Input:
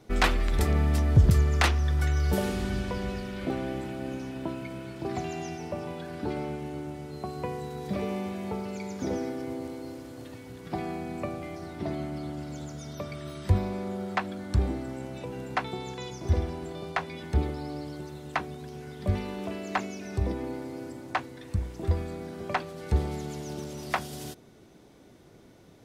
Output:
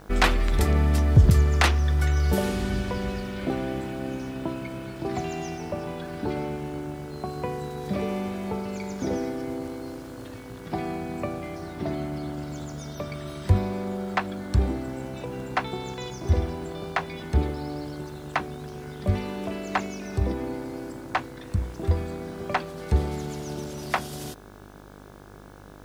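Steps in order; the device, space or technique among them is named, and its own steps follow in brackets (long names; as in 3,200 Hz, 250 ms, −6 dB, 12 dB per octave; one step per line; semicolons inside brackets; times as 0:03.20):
video cassette with head-switching buzz (hum with harmonics 50 Hz, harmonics 34, −51 dBFS −3 dB per octave; white noise bed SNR 38 dB)
level +3 dB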